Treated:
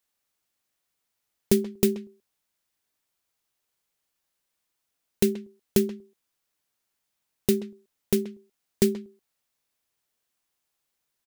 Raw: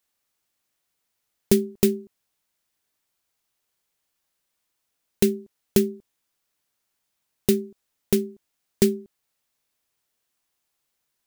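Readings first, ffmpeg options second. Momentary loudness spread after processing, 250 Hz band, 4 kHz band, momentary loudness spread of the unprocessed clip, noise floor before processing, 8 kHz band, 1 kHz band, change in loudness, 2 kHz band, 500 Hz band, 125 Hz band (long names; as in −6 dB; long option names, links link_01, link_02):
13 LU, −2.5 dB, −2.5 dB, 13 LU, −78 dBFS, −2.5 dB, −2.0 dB, −2.5 dB, −2.5 dB, −2.5 dB, −2.5 dB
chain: -filter_complex "[0:a]asplit=2[link_01][link_02];[link_02]adelay=130,highpass=300,lowpass=3400,asoftclip=type=hard:threshold=-13.5dB,volume=-13dB[link_03];[link_01][link_03]amix=inputs=2:normalize=0,volume=-2.5dB"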